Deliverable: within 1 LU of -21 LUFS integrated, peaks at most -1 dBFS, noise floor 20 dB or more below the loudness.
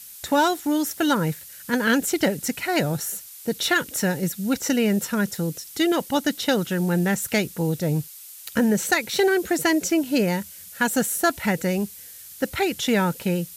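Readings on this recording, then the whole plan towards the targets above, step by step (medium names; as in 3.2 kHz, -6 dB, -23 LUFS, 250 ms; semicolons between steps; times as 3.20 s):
noise floor -42 dBFS; noise floor target -43 dBFS; loudness -23.0 LUFS; peak level -9.0 dBFS; loudness target -21.0 LUFS
-> noise print and reduce 6 dB; trim +2 dB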